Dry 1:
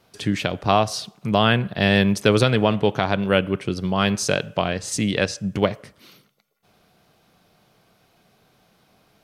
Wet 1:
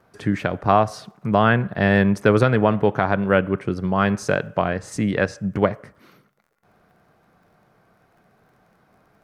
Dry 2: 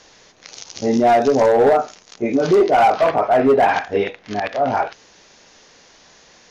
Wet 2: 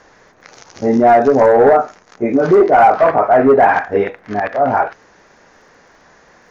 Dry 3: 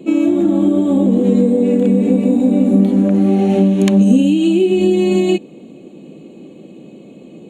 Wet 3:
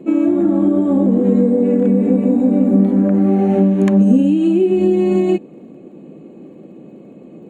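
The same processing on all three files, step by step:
surface crackle 32 per second −44 dBFS
high shelf with overshoot 2,300 Hz −10 dB, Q 1.5
normalise the peak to −2 dBFS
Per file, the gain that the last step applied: +1.0, +3.5, −1.0 decibels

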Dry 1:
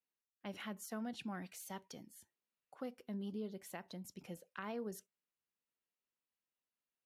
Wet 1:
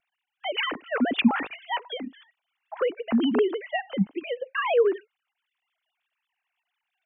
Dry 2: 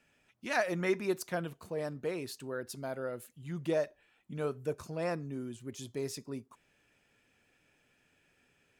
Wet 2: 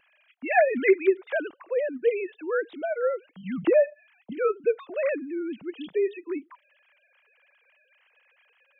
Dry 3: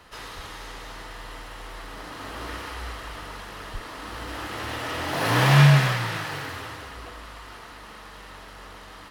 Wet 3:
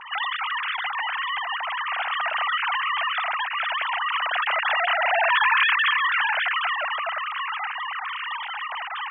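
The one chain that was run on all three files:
three sine waves on the formant tracks
downward compressor 3 to 1, threshold −29 dBFS
high-shelf EQ 2,600 Hz +8.5 dB
tape wow and flutter 22 cents
normalise the peak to −9 dBFS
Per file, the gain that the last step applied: +19.5, +12.5, +6.0 decibels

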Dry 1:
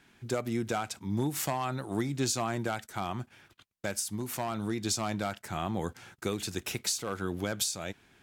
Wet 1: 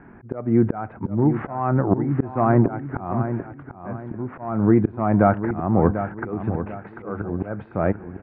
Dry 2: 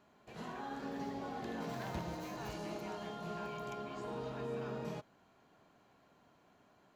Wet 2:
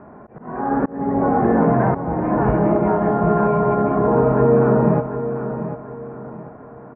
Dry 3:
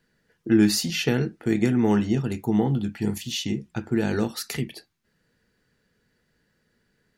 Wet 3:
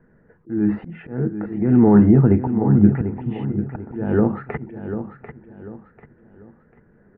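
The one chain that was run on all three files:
Bessel low-pass filter 1,000 Hz, order 8
brickwall limiter −19 dBFS
volume swells 415 ms
repeating echo 743 ms, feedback 34%, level −10 dB
normalise the peak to −3 dBFS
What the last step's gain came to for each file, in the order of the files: +19.5, +27.0, +15.0 decibels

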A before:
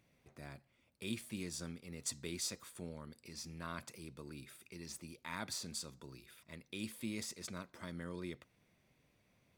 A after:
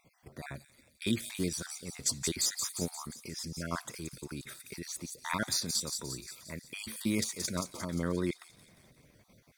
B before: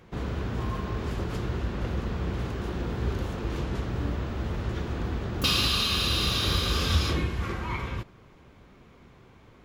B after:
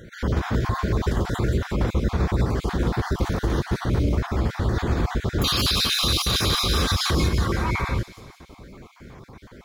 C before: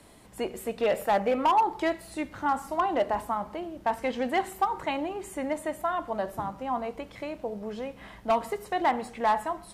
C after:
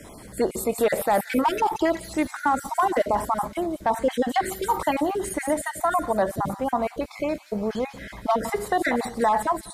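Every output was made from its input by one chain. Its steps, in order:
time-frequency cells dropped at random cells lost 32%
parametric band 2,800 Hz −9 dB 0.27 octaves
in parallel at 0 dB: output level in coarse steps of 15 dB
on the sum: brickwall limiter −20.5 dBFS
on a send: delay with a high-pass on its return 176 ms, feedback 55%, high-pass 4,900 Hz, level −3.5 dB
on the sum: level +7.5 dB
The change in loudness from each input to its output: +10.0, +5.5, +4.5 LU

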